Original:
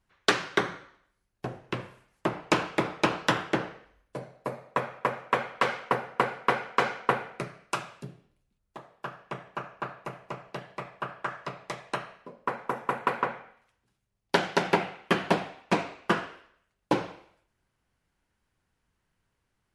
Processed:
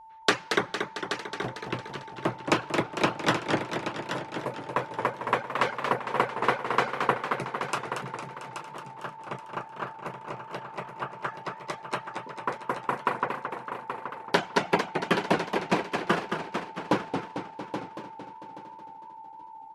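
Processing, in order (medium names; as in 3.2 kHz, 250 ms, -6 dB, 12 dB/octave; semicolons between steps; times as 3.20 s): reverb removal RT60 1.7 s; whistle 890 Hz -47 dBFS; feedback delay 827 ms, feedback 21%, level -9 dB; modulated delay 226 ms, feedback 62%, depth 169 cents, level -6.5 dB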